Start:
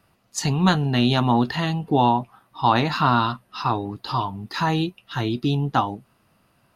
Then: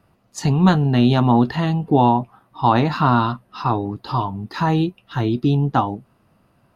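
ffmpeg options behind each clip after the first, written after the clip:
ffmpeg -i in.wav -af "tiltshelf=frequency=1400:gain=5" out.wav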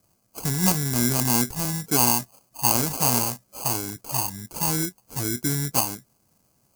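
ffmpeg -i in.wav -af "acrusher=samples=24:mix=1:aa=0.000001,aexciter=amount=5.6:drive=5.4:freq=4800,volume=-9.5dB" out.wav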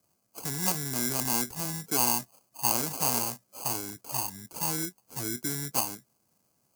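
ffmpeg -i in.wav -filter_complex "[0:a]highpass=frequency=160:poles=1,acrossover=split=290[link_01][link_02];[link_01]alimiter=level_in=4.5dB:limit=-24dB:level=0:latency=1,volume=-4.5dB[link_03];[link_03][link_02]amix=inputs=2:normalize=0,volume=-5.5dB" out.wav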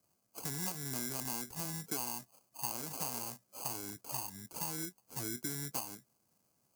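ffmpeg -i in.wav -af "acompressor=threshold=-30dB:ratio=6,volume=-4dB" out.wav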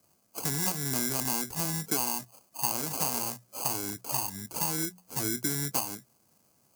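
ffmpeg -i in.wav -af "bandreject=frequency=60:width_type=h:width=6,bandreject=frequency=120:width_type=h:width=6,bandreject=frequency=180:width_type=h:width=6,volume=9dB" out.wav

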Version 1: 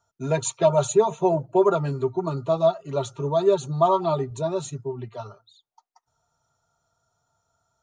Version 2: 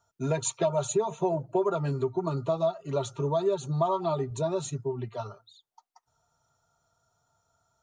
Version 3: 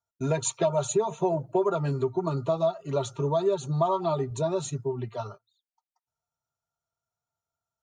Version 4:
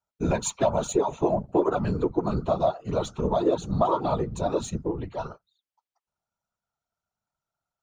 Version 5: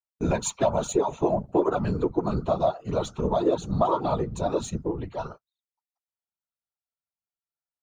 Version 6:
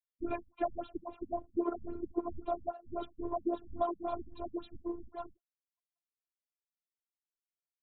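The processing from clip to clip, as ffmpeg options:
ffmpeg -i in.wav -af "acompressor=threshold=-25dB:ratio=3" out.wav
ffmpeg -i in.wav -af "agate=range=-20dB:threshold=-44dB:ratio=16:detection=peak,volume=1.5dB" out.wav
ffmpeg -i in.wav -af "adynamicsmooth=sensitivity=5:basefreq=7700,afftfilt=real='hypot(re,im)*cos(2*PI*random(0))':imag='hypot(re,im)*sin(2*PI*random(1))':win_size=512:overlap=0.75,volume=7.5dB" out.wav
ffmpeg -i in.wav -af "agate=range=-17dB:threshold=-44dB:ratio=16:detection=peak" out.wav
ffmpeg -i in.wav -af "afftfilt=real='hypot(re,im)*cos(PI*b)':imag='0':win_size=512:overlap=0.75,afftfilt=real='re*lt(b*sr/1024,220*pow(4300/220,0.5+0.5*sin(2*PI*3.7*pts/sr)))':imag='im*lt(b*sr/1024,220*pow(4300/220,0.5+0.5*sin(2*PI*3.7*pts/sr)))':win_size=1024:overlap=0.75,volume=-7dB" out.wav

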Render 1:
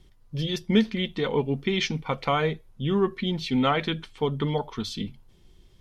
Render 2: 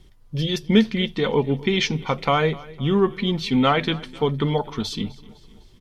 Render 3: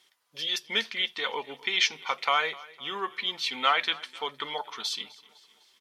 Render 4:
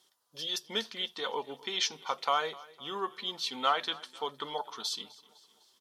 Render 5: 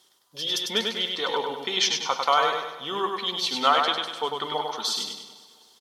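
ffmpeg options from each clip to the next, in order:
ffmpeg -i in.wav -af "aecho=1:1:254|508|762|1016:0.0891|0.0463|0.0241|0.0125,volume=4.5dB" out.wav
ffmpeg -i in.wav -af "highpass=1100" out.wav
ffmpeg -i in.wav -af "equalizer=frequency=2200:width=1.6:gain=-14.5" out.wav
ffmpeg -i in.wav -af "aecho=1:1:99|198|297|396|495|594:0.631|0.29|0.134|0.0614|0.0283|0.013,volume=7dB" out.wav

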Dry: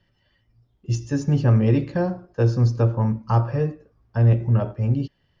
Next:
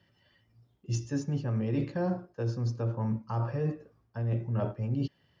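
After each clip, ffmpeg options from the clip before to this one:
ffmpeg -i in.wav -af "areverse,acompressor=threshold=-26dB:ratio=10,areverse,highpass=96" out.wav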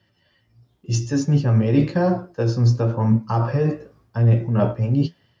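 ffmpeg -i in.wav -af "equalizer=frequency=4800:width=1.5:gain=2.5,dynaudnorm=framelen=330:gausssize=5:maxgain=9dB,flanger=delay=8.2:depth=9.4:regen=53:speed=0.94:shape=triangular,volume=7dB" out.wav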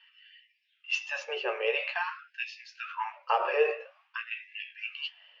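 ffmpeg -i in.wav -af "alimiter=limit=-13.5dB:level=0:latency=1:release=234,lowpass=frequency=2700:width_type=q:width=6.8,afftfilt=real='re*gte(b*sr/1024,350*pow(1700/350,0.5+0.5*sin(2*PI*0.49*pts/sr)))':imag='im*gte(b*sr/1024,350*pow(1700/350,0.5+0.5*sin(2*PI*0.49*pts/sr)))':win_size=1024:overlap=0.75" out.wav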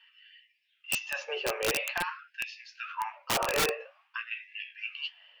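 ffmpeg -i in.wav -af "aeval=exprs='(mod(11.2*val(0)+1,2)-1)/11.2':channel_layout=same" out.wav

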